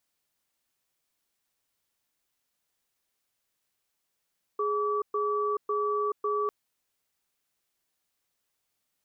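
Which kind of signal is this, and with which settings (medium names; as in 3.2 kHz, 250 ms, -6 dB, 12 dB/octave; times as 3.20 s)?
cadence 417 Hz, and 1.15 kHz, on 0.43 s, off 0.12 s, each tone -28 dBFS 1.90 s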